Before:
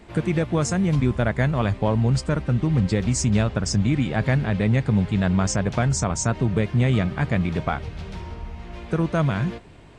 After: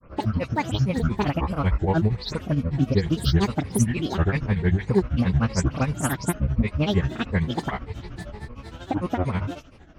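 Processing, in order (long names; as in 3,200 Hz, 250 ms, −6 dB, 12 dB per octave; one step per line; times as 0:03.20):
every frequency bin delayed by itself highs late, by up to 108 ms
EQ curve with evenly spaced ripples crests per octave 0.9, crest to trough 8 dB
granular cloud 112 ms, grains 13 per second, spray 23 ms, pitch spread up and down by 12 semitones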